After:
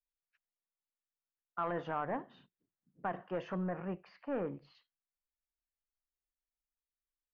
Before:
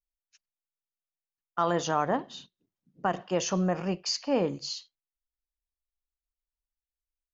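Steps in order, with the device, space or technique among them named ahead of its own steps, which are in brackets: overdriven synthesiser ladder filter (soft clip -20.5 dBFS, distortion -14 dB; ladder low-pass 2300 Hz, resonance 30%); 3.69–4.75 air absorption 160 m; gain -1 dB

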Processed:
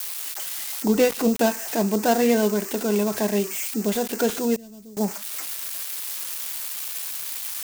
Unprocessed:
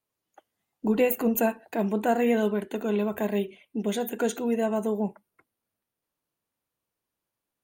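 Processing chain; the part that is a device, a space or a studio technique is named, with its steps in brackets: budget class-D amplifier (switching dead time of 0.14 ms; switching spikes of -19 dBFS); 4.56–4.97 passive tone stack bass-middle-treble 10-0-1; gain +4 dB

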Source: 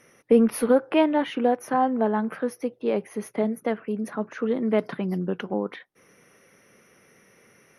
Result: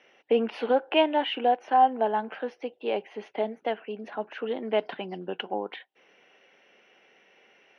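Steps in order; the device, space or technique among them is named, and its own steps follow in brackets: phone earpiece (speaker cabinet 430–4100 Hz, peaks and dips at 500 Hz -3 dB, 780 Hz +6 dB, 1200 Hz -9 dB, 2000 Hz -3 dB, 2900 Hz +9 dB)

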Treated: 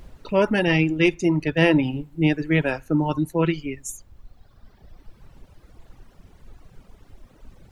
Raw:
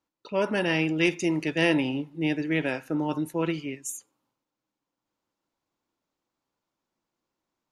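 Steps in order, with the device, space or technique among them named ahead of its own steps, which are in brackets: car interior (bell 130 Hz +8.5 dB 0.88 oct; high shelf 4900 Hz -7 dB; brown noise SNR 19 dB); 0.98–1.83 high shelf 3600 Hz -4.5 dB; reverb removal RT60 1.9 s; gain +6.5 dB

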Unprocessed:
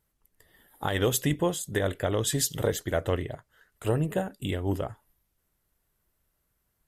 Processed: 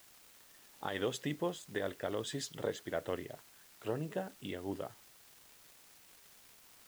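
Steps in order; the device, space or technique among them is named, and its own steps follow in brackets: 78 rpm shellac record (BPF 180–5200 Hz; crackle 370/s -40 dBFS; white noise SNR 20 dB); gain -9 dB

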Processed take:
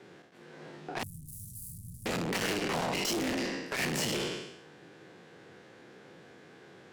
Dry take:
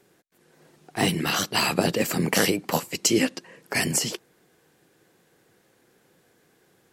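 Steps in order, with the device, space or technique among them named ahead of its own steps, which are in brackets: spectral trails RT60 0.78 s; valve radio (BPF 95–4100 Hz; tube stage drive 35 dB, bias 0.2; core saturation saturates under 350 Hz); 1.03–2.06 elliptic band-stop 120–9900 Hz, stop band 70 dB; gain +7.5 dB

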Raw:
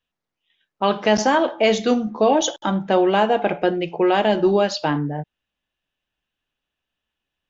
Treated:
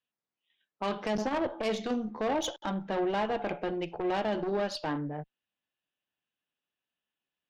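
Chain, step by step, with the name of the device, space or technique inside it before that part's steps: 1.15–1.63 tilt shelf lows +5.5 dB; valve radio (BPF 140–5800 Hz; tube stage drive 17 dB, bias 0.45; core saturation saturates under 210 Hz); gain -7 dB

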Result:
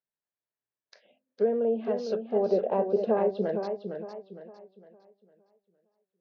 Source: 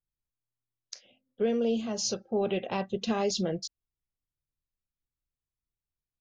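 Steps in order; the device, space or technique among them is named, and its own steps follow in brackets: kitchen radio (speaker cabinet 200–3900 Hz, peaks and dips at 200 Hz +6 dB, 430 Hz +8 dB, 630 Hz +10 dB, 930 Hz +7 dB, 1700 Hz +9 dB, 3100 Hz -4 dB); treble ducked by the level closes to 1200 Hz, closed at -17 dBFS; 2.49–3.17 graphic EQ 500/2000/4000 Hz +8/-9/-9 dB; warbling echo 0.458 s, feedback 36%, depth 91 cents, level -7 dB; gain -5 dB

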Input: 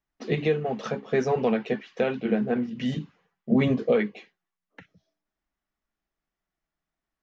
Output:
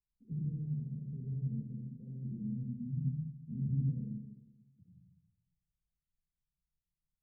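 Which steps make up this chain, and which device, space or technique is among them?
club heard from the street (limiter -17 dBFS, peak gain reduction 6 dB; LPF 150 Hz 24 dB/oct; reverb RT60 1.0 s, pre-delay 53 ms, DRR -2 dB); gain -4 dB

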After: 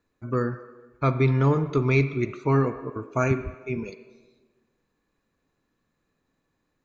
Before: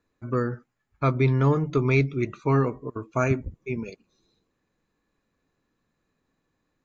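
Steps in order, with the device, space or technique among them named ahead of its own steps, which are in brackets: filtered reverb send (on a send: HPF 340 Hz 12 dB/oct + LPF 3500 Hz 12 dB/oct + reverb RT60 1.3 s, pre-delay 35 ms, DRR 10.5 dB)

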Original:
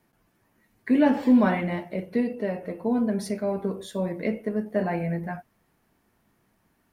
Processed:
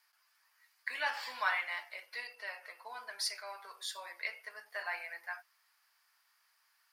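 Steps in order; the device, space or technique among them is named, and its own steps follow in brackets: headphones lying on a table (HPF 1100 Hz 24 dB/oct; bell 4800 Hz +12 dB 0.31 oct)

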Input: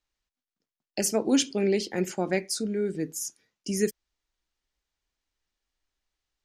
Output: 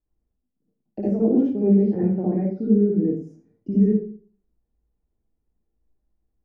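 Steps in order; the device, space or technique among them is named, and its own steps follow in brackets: 2.06–3.17 air absorption 210 m; television next door (compressor 3:1, threshold -29 dBFS, peak gain reduction 9 dB; LPF 350 Hz 12 dB/oct; reverb RT60 0.45 s, pre-delay 53 ms, DRR -8 dB); gain +6.5 dB

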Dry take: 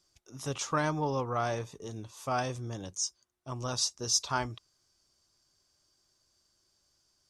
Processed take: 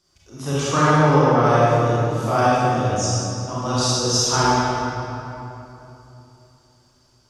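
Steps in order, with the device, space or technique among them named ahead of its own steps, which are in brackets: swimming-pool hall (reverb RT60 3.2 s, pre-delay 28 ms, DRR -9 dB; high shelf 4400 Hz -6 dB); gain +6 dB

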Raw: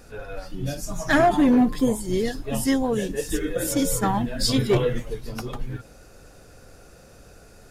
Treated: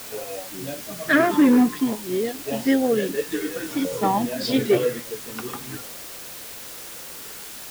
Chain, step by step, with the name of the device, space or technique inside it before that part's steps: shortwave radio (BPF 270–2700 Hz; tremolo 0.69 Hz, depth 39%; LFO notch saw down 0.52 Hz 500–1800 Hz; white noise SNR 14 dB); gain +6 dB

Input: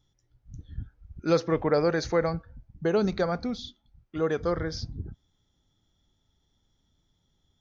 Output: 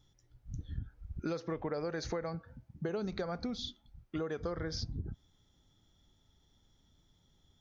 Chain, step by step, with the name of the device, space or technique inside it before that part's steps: serial compression, peaks first (compressor 5:1, threshold -32 dBFS, peak gain reduction 13.5 dB; compressor 2:1, threshold -39 dBFS, peak gain reduction 6 dB); 2.24–2.89 HPF 110 Hz 12 dB/oct; gain +2.5 dB

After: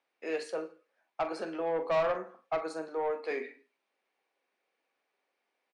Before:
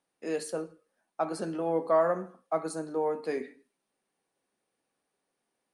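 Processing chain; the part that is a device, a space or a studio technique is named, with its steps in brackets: 2.88–3.31 HPF 310 Hz 12 dB/oct; intercom (BPF 430–4300 Hz; bell 2300 Hz +7 dB 0.41 oct; soft clip -25.5 dBFS, distortion -11 dB; doubler 44 ms -12 dB); gain +1.5 dB

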